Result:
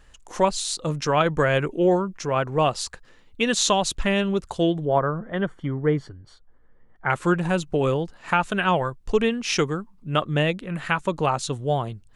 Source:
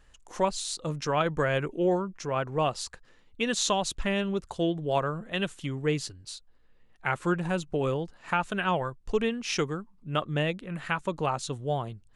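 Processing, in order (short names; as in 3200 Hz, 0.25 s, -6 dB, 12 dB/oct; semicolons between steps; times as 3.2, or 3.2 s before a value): 4.85–7.1 polynomial smoothing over 41 samples; gain +6 dB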